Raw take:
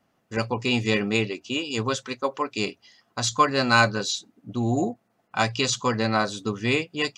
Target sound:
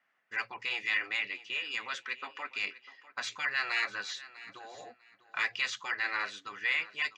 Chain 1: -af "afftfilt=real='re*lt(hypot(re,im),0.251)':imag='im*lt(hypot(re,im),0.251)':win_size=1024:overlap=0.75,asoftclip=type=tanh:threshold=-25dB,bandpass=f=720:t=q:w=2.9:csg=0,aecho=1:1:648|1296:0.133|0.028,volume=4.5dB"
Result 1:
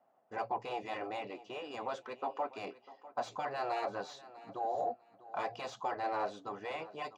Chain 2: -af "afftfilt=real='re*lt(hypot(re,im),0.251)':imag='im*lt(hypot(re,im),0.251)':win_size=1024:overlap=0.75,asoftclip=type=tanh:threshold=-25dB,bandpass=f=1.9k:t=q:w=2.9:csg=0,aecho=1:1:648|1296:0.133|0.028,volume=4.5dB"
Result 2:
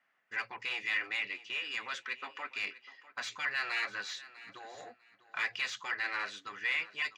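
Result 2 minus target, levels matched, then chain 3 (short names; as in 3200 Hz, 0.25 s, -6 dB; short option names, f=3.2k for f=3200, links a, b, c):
soft clip: distortion +10 dB
-af "afftfilt=real='re*lt(hypot(re,im),0.251)':imag='im*lt(hypot(re,im),0.251)':win_size=1024:overlap=0.75,asoftclip=type=tanh:threshold=-17dB,bandpass=f=1.9k:t=q:w=2.9:csg=0,aecho=1:1:648|1296:0.133|0.028,volume=4.5dB"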